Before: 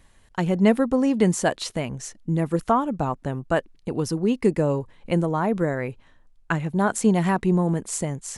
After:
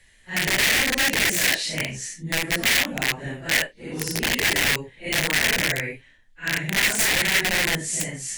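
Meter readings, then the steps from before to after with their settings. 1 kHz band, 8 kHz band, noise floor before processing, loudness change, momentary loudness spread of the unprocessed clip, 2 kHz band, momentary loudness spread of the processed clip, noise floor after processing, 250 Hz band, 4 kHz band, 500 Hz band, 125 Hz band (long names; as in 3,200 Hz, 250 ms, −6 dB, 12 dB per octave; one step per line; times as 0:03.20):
−5.5 dB, +9.5 dB, −56 dBFS, +2.5 dB, 10 LU, +13.0 dB, 10 LU, −54 dBFS, −10.0 dB, +16.5 dB, −8.0 dB, −7.5 dB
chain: random phases in long frames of 200 ms
wrap-around overflow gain 18 dB
high shelf with overshoot 1,500 Hz +7.5 dB, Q 3
level −3.5 dB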